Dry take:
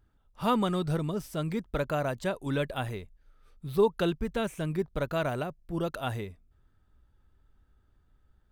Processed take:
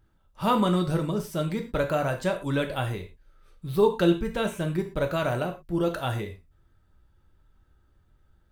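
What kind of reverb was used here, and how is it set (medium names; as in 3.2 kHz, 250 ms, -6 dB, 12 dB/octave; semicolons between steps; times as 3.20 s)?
gated-style reverb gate 140 ms falling, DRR 4 dB; trim +2.5 dB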